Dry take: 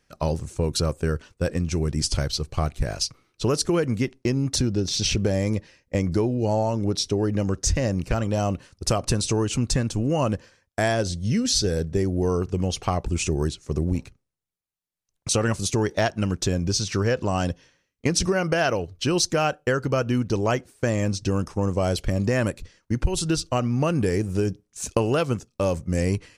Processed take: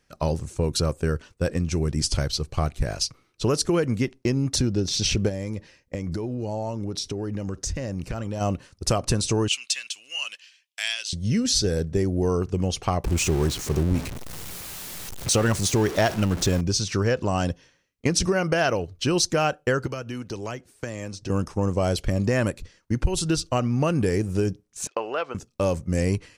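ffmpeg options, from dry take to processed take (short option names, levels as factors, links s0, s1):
-filter_complex "[0:a]asplit=3[s0][s1][s2];[s0]afade=t=out:st=5.28:d=0.02[s3];[s1]acompressor=threshold=0.0562:ratio=6:attack=3.2:release=140:knee=1:detection=peak,afade=t=in:st=5.28:d=0.02,afade=t=out:st=8.4:d=0.02[s4];[s2]afade=t=in:st=8.4:d=0.02[s5];[s3][s4][s5]amix=inputs=3:normalize=0,asettb=1/sr,asplit=3[s6][s7][s8];[s6]atrim=end=9.484[s9];[s7]atrim=start=9.48:end=11.13,asetpts=PTS-STARTPTS,afade=t=in:d=0.004:c=qsin,afade=t=out:st=1.646:d=0.004:c=qsin,highpass=f=2800:t=q:w=3.7[s10];[s8]atrim=start=11.126[s11];[s9][s10]acrossfade=d=0.004:c1=hsin:c2=qsin[s12];[s12][s11]acrossfade=d=0.004:c1=qsin:c2=hsin,asettb=1/sr,asplit=3[s13][s14][s15];[s13]atrim=end=13.044[s16];[s14]atrim=start=13.04:end=16.61,asetpts=PTS-STARTPTS,afade=t=in:d=0.004:c=qsin,afade=t=out:st=3.566:d=0.004:c=qsin,aeval=exprs='val(0)+0.5*0.0398*sgn(val(0))':c=same[s17];[s15]atrim=start=16.606[s18];[s16][s17]acrossfade=d=0.004:c1=hsin:c2=qsin[s19];[s19][s18]acrossfade=d=0.004:c1=qsin:c2=hsin,asettb=1/sr,asplit=3[s20][s21][s22];[s20]atrim=end=19.864[s23];[s21]atrim=start=19.86:end=21.3,asetpts=PTS-STARTPTS,afade=t=in:d=0.004:c=qsin,afade=t=out:st=1.436:d=0.004:c=qsin,acrossover=split=340|1500[s24][s25][s26];[s24]acompressor=threshold=0.0158:ratio=4[s27];[s25]acompressor=threshold=0.0158:ratio=4[s28];[s26]acompressor=threshold=0.01:ratio=4[s29];[s27][s28][s29]amix=inputs=3:normalize=0[s30];[s22]atrim=start=21.296[s31];[s23][s30]acrossfade=d=0.004:c1=hsin:c2=qsin[s32];[s32][s31]acrossfade=d=0.004:c1=qsin:c2=hsin,asettb=1/sr,asplit=3[s33][s34][s35];[s33]atrim=end=24.874[s36];[s34]atrim=start=24.87:end=25.35,asetpts=PTS-STARTPTS,afade=t=in:d=0.004:c=qsin,afade=t=out:st=0.476:d=0.004:c=qsin,highpass=640,lowpass=2500[s37];[s35]atrim=start=25.346[s38];[s36][s37]acrossfade=d=0.004:c1=hsin:c2=qsin[s39];[s39][s38]acrossfade=d=0.004:c1=qsin:c2=hsin"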